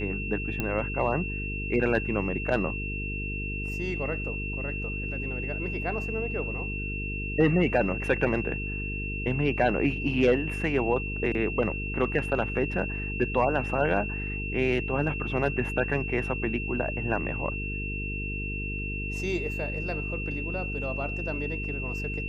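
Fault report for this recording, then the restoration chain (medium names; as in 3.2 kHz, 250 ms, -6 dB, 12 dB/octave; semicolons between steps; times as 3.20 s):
buzz 50 Hz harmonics 9 -34 dBFS
whine 2.7 kHz -34 dBFS
0.60 s: pop -15 dBFS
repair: de-click; band-stop 2.7 kHz, Q 30; de-hum 50 Hz, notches 9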